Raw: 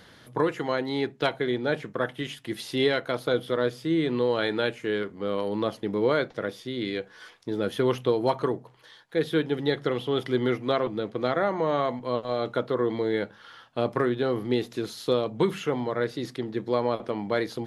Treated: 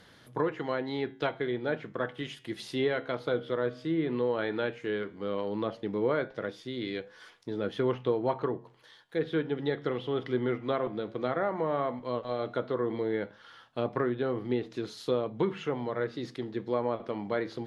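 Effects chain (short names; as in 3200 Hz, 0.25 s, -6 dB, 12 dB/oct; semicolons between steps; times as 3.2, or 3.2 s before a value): treble ducked by the level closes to 2300 Hz, closed at -21 dBFS; flange 0.14 Hz, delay 6.8 ms, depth 7.3 ms, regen -86%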